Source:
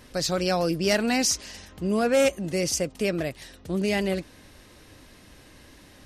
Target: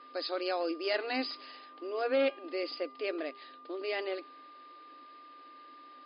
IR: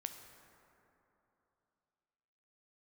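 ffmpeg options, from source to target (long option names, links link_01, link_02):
-af "bandreject=frequency=405.7:width_type=h:width=4,bandreject=frequency=811.4:width_type=h:width=4,bandreject=frequency=1217.1:width_type=h:width=4,bandreject=frequency=1622.8:width_type=h:width=4,bandreject=frequency=2028.5:width_type=h:width=4,bandreject=frequency=2434.2:width_type=h:width=4,bandreject=frequency=2839.9:width_type=h:width=4,bandreject=frequency=3245.6:width_type=h:width=4,bandreject=frequency=3651.3:width_type=h:width=4,bandreject=frequency=4057:width_type=h:width=4,bandreject=frequency=4462.7:width_type=h:width=4,bandreject=frequency=4868.4:width_type=h:width=4,bandreject=frequency=5274.1:width_type=h:width=4,bandreject=frequency=5679.8:width_type=h:width=4,bandreject=frequency=6085.5:width_type=h:width=4,bandreject=frequency=6491.2:width_type=h:width=4,bandreject=frequency=6896.9:width_type=h:width=4,bandreject=frequency=7302.6:width_type=h:width=4,bandreject=frequency=7708.3:width_type=h:width=4,bandreject=frequency=8114:width_type=h:width=4,bandreject=frequency=8519.7:width_type=h:width=4,bandreject=frequency=8925.4:width_type=h:width=4,bandreject=frequency=9331.1:width_type=h:width=4,bandreject=frequency=9736.8:width_type=h:width=4,bandreject=frequency=10142.5:width_type=h:width=4,bandreject=frequency=10548.2:width_type=h:width=4,bandreject=frequency=10953.9:width_type=h:width=4,bandreject=frequency=11359.6:width_type=h:width=4,bandreject=frequency=11765.3:width_type=h:width=4,bandreject=frequency=12171:width_type=h:width=4,bandreject=frequency=12576.7:width_type=h:width=4,bandreject=frequency=12982.4:width_type=h:width=4,bandreject=frequency=13388.1:width_type=h:width=4,bandreject=frequency=13793.8:width_type=h:width=4,bandreject=frequency=14199.5:width_type=h:width=4,bandreject=frequency=14605.2:width_type=h:width=4,bandreject=frequency=15010.9:width_type=h:width=4,bandreject=frequency=15416.6:width_type=h:width=4,bandreject=frequency=15822.3:width_type=h:width=4,aeval=exprs='val(0)+0.00708*sin(2*PI*1200*n/s)':channel_layout=same,afftfilt=real='re*between(b*sr/4096,250,5100)':imag='im*between(b*sr/4096,250,5100)':win_size=4096:overlap=0.75,volume=-7.5dB"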